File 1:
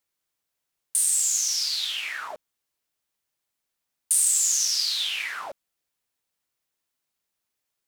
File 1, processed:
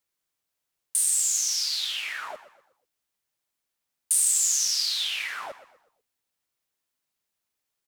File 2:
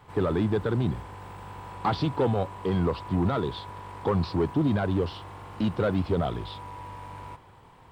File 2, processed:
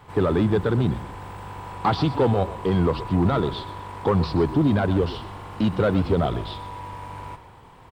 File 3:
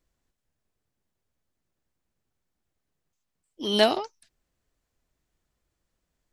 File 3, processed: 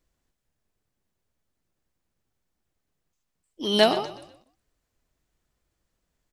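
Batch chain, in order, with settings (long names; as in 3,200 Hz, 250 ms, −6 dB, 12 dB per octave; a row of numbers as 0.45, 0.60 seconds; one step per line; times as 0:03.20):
echo with shifted repeats 123 ms, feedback 39%, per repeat −30 Hz, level −14.5 dB
loudness normalisation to −23 LKFS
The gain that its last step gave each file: −1.0, +4.5, +1.5 decibels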